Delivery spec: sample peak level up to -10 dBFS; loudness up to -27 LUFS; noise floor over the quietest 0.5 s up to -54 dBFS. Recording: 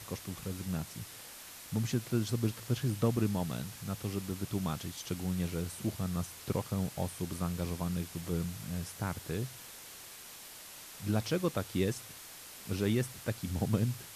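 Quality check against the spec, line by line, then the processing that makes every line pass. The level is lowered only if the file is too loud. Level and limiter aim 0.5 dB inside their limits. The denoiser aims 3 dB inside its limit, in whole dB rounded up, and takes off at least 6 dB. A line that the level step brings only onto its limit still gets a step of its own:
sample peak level -16.0 dBFS: pass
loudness -35.5 LUFS: pass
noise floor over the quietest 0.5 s -50 dBFS: fail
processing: noise reduction 7 dB, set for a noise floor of -50 dBFS

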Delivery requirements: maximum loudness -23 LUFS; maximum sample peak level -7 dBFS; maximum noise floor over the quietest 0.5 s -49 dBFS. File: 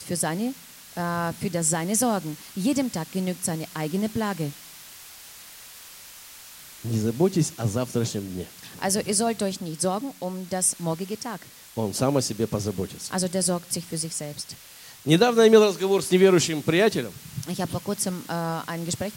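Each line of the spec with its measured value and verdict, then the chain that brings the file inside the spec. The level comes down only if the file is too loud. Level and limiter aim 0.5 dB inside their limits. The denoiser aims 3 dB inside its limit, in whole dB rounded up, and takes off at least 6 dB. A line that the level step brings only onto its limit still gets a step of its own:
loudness -24.5 LUFS: pass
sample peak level -3.5 dBFS: fail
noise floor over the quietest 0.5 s -46 dBFS: fail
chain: noise reduction 6 dB, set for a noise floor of -46 dBFS; peak limiter -7.5 dBFS

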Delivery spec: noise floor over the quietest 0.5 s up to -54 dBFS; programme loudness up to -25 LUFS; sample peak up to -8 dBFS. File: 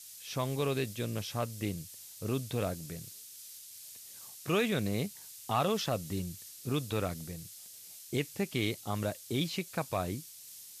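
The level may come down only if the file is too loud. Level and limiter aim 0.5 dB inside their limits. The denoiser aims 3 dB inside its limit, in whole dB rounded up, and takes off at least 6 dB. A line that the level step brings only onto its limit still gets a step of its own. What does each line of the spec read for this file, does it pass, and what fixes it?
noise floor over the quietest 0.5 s -50 dBFS: fail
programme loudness -35.0 LUFS: pass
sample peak -19.0 dBFS: pass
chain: noise reduction 7 dB, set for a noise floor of -50 dBFS

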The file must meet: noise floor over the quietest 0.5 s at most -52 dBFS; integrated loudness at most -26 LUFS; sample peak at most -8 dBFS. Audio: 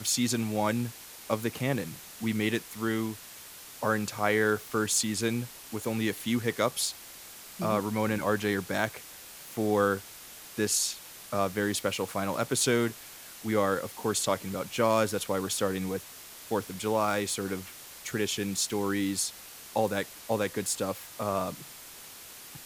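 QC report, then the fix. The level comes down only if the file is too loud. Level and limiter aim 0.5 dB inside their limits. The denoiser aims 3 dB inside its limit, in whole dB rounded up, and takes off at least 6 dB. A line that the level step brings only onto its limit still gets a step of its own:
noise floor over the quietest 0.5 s -47 dBFS: fail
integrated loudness -30.0 LUFS: pass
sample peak -11.0 dBFS: pass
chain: noise reduction 8 dB, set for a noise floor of -47 dBFS

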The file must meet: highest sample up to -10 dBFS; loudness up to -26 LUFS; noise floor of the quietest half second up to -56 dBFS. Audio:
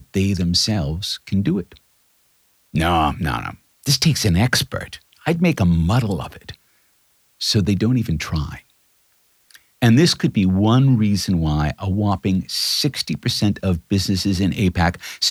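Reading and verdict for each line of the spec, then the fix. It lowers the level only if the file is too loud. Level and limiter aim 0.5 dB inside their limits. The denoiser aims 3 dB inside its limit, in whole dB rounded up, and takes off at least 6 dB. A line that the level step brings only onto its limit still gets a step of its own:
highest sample -3.0 dBFS: fail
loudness -19.0 LUFS: fail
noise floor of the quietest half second -61 dBFS: pass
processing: trim -7.5 dB

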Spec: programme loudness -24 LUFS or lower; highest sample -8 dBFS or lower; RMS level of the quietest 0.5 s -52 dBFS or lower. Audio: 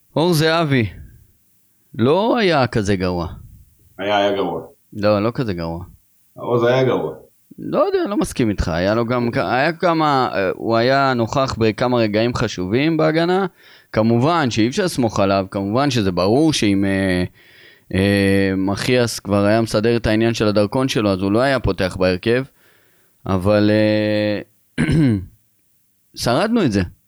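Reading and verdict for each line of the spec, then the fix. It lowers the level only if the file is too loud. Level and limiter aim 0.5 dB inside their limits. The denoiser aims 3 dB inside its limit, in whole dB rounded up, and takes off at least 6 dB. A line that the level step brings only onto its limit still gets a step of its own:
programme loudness -18.0 LUFS: fail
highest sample -5.5 dBFS: fail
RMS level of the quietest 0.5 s -60 dBFS: pass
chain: trim -6.5 dB

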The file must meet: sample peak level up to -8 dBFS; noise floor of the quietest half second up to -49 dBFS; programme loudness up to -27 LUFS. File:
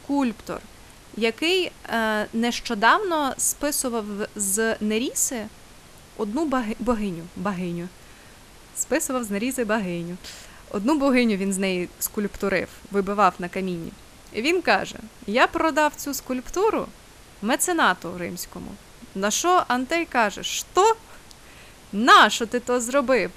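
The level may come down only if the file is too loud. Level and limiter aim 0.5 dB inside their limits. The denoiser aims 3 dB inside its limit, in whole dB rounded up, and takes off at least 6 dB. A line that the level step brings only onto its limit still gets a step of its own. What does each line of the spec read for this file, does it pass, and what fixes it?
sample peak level -5.5 dBFS: fail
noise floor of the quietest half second -47 dBFS: fail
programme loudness -23.0 LUFS: fail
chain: trim -4.5 dB

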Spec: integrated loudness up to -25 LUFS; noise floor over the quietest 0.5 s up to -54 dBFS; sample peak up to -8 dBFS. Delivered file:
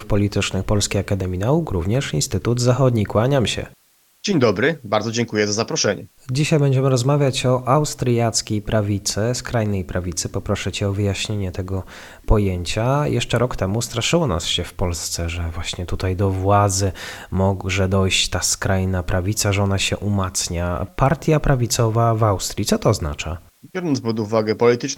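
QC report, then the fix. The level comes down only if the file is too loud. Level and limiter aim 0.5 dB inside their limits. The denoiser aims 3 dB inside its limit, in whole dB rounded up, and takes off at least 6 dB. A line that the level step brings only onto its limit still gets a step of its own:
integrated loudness -20.0 LUFS: fail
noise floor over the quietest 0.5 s -58 dBFS: pass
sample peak -3.5 dBFS: fail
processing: trim -5.5 dB

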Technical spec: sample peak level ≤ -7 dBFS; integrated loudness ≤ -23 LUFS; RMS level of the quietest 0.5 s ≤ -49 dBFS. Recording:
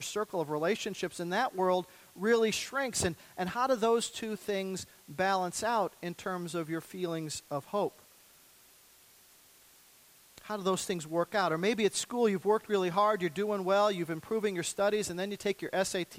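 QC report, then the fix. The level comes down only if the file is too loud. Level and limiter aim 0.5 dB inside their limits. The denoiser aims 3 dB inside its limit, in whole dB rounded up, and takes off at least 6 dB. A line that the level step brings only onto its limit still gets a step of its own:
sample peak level -15.0 dBFS: pass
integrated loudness -32.0 LUFS: pass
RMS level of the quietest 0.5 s -60 dBFS: pass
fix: none needed

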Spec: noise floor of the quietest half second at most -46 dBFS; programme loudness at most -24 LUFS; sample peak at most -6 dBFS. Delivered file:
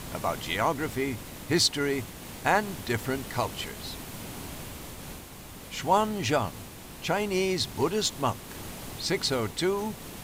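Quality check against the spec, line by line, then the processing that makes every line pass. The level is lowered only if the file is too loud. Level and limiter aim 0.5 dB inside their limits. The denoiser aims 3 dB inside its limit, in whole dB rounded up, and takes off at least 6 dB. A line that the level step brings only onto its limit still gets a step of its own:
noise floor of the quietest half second -44 dBFS: fail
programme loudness -29.0 LUFS: pass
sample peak -10.0 dBFS: pass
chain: noise reduction 6 dB, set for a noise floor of -44 dBFS

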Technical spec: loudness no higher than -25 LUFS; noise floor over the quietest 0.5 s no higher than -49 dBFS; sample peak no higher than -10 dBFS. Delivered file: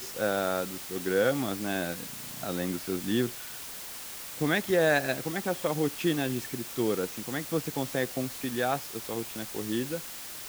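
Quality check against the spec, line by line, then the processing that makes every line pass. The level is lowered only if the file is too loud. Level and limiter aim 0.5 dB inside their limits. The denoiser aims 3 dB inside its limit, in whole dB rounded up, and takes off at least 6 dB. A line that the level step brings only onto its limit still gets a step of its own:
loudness -30.5 LUFS: pass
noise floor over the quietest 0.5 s -41 dBFS: fail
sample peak -12.0 dBFS: pass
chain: noise reduction 11 dB, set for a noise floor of -41 dBFS

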